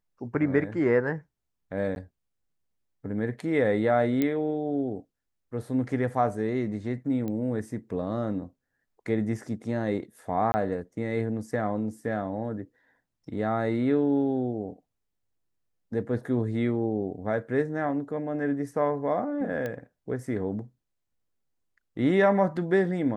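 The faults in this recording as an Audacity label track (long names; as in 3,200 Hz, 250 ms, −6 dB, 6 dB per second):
1.950000	1.960000	drop-out
4.220000	4.220000	click −13 dBFS
7.280000	7.280000	click −22 dBFS
10.520000	10.540000	drop-out 20 ms
19.660000	19.660000	click −20 dBFS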